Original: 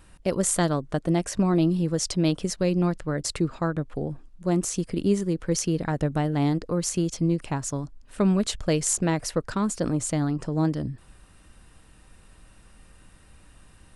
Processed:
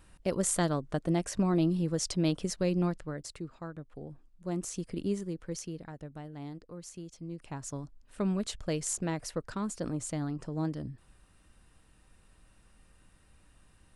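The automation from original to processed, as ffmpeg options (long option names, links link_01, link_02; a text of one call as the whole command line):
ffmpeg -i in.wav -af "volume=11.5dB,afade=type=out:start_time=2.82:duration=0.48:silence=0.316228,afade=type=in:start_time=3.88:duration=1.08:silence=0.446684,afade=type=out:start_time=4.96:duration=1:silence=0.298538,afade=type=in:start_time=7.26:duration=0.48:silence=0.316228" out.wav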